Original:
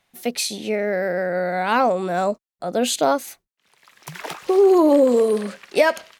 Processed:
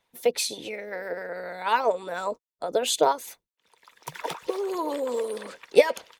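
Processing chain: harmonic-percussive split harmonic -17 dB; small resonant body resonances 480/940/3500 Hz, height 9 dB, ringing for 30 ms; gain -2 dB

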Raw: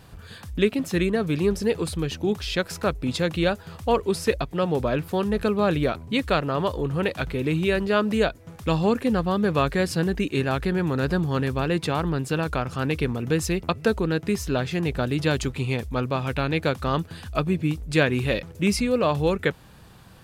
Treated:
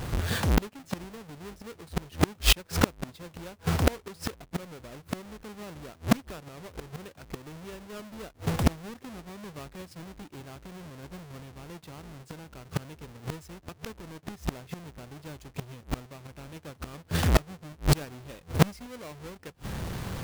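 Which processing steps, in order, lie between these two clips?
half-waves squared off; flipped gate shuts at -20 dBFS, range -34 dB; gain +9 dB

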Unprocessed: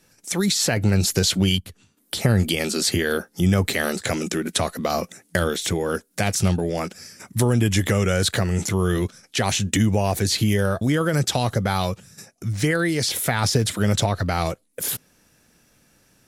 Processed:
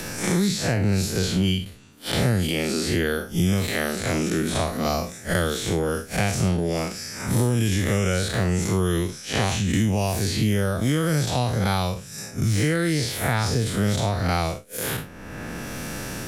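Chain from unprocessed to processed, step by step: time blur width 0.115 s; three-band squash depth 100%

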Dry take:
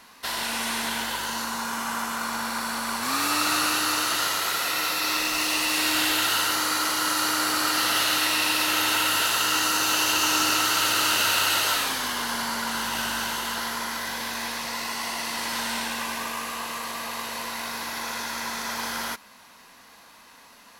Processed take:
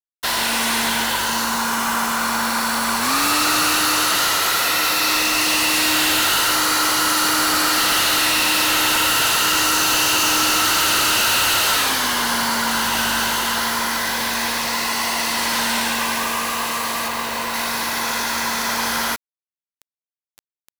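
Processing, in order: 17.08–17.54 high shelf 4600 Hz -8.5 dB; in parallel at -10.5 dB: sine folder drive 13 dB, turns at -9.5 dBFS; on the sum: bit-crush 5-bit

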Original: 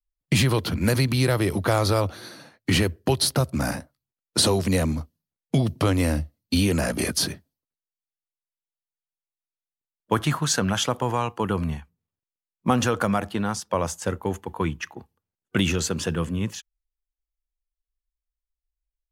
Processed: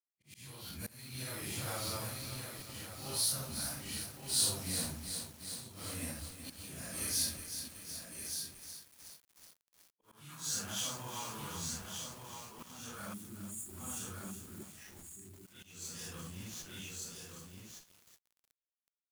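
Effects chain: phase scrambler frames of 0.2 s; expander -43 dBFS; in parallel at -11 dB: Schmitt trigger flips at -35.5 dBFS; on the sum: spectral delete 13.14–14.65, 410–6600 Hz; on a send: echo 1.172 s -7 dB; on the sum: dynamic EQ 420 Hz, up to -6 dB, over -37 dBFS, Q 1.8; auto swell 0.547 s; pre-emphasis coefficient 0.8; lo-fi delay 0.37 s, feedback 80%, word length 7-bit, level -8 dB; gain -7 dB

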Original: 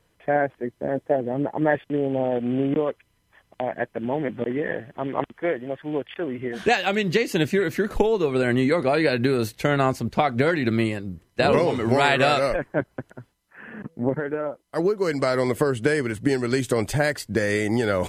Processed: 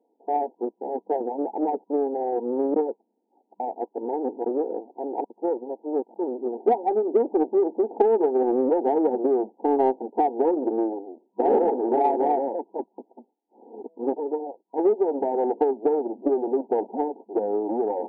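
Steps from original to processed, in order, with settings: minimum comb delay 2.5 ms; FFT band-pass 200–960 Hz; in parallel at -9 dB: soft clip -21 dBFS, distortion -12 dB

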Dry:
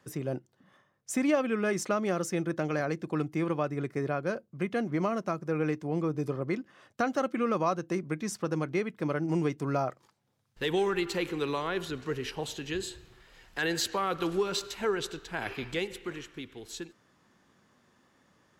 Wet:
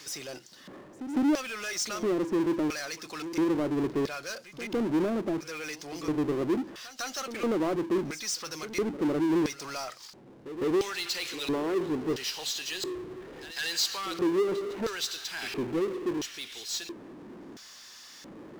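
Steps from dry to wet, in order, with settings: LFO band-pass square 0.74 Hz 330–5100 Hz; pre-echo 0.156 s -24 dB; power-law curve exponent 0.5; gain +2 dB

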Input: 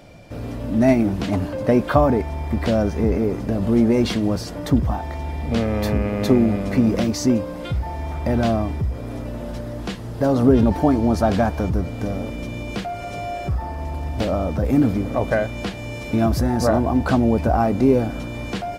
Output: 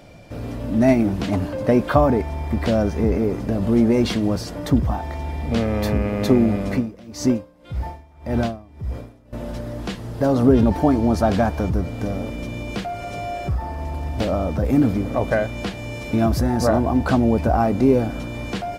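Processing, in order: 6.72–9.33 dB-linear tremolo 1.8 Hz, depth 23 dB

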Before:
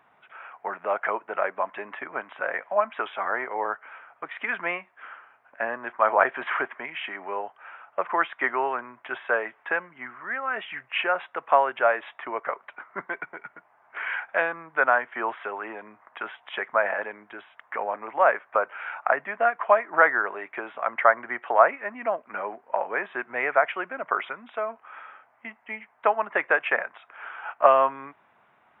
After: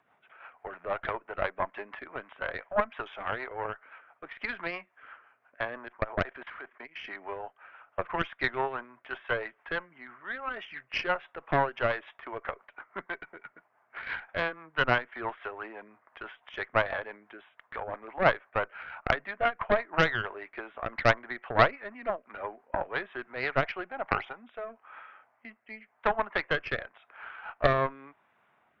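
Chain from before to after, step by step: 5.88–7 level quantiser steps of 18 dB; 23.78–24.46 bell 800 Hz +13.5 dB 0.27 oct; added harmonics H 4 -11 dB, 7 -37 dB, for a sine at -2 dBFS; rotary speaker horn 6 Hz, later 0.9 Hz, at 23.26; gain -3 dB

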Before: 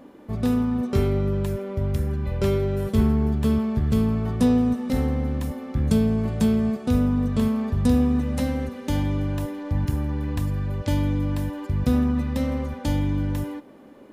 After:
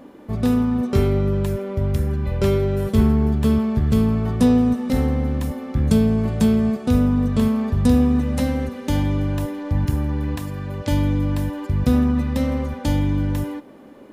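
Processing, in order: 10.35–10.9 HPF 330 Hz -> 110 Hz 6 dB/oct; gain +3.5 dB

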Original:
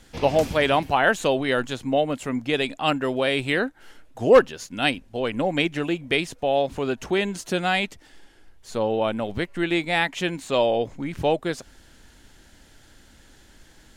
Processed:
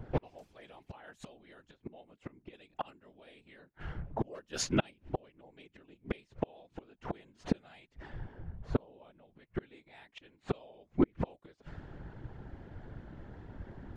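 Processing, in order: low-pass opened by the level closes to 900 Hz, open at -17 dBFS; flipped gate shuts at -22 dBFS, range -40 dB; whisperiser; gain +6 dB

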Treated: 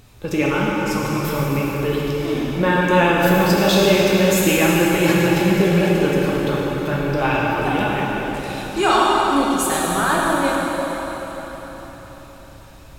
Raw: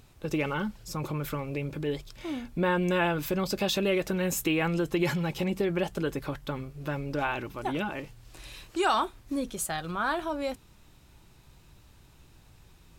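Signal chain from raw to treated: plate-style reverb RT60 4.6 s, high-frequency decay 0.85×, DRR -5 dB; gain +6.5 dB

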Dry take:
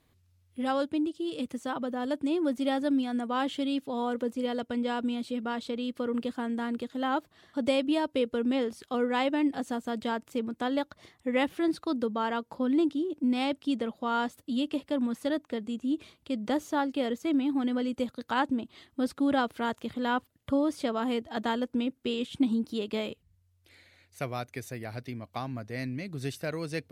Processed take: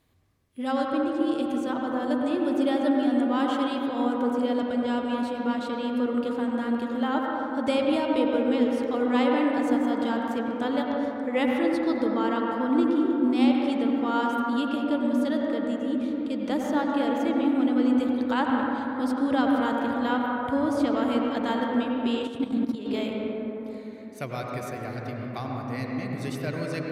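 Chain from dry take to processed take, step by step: reverb RT60 4.0 s, pre-delay 78 ms, DRR -1.5 dB; 22.27–22.86 level quantiser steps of 12 dB

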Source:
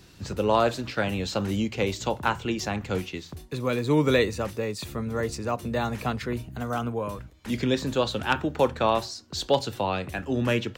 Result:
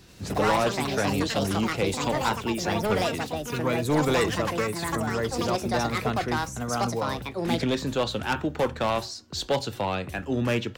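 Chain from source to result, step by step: hard clip -19 dBFS, distortion -12 dB; echoes that change speed 87 ms, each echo +6 st, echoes 2

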